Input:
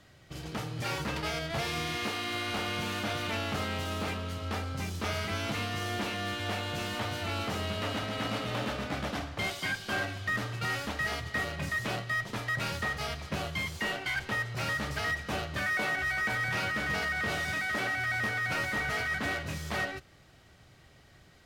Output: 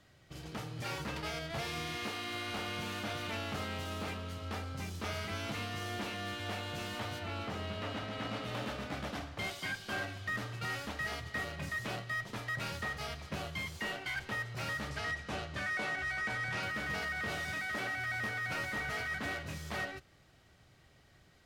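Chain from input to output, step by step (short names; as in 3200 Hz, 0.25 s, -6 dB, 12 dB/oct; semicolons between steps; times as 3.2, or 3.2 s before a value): 7.18–8.43 high shelf 4900 Hz -> 8400 Hz -11 dB; 14.9–16.63 LPF 9500 Hz 12 dB/oct; gain -5.5 dB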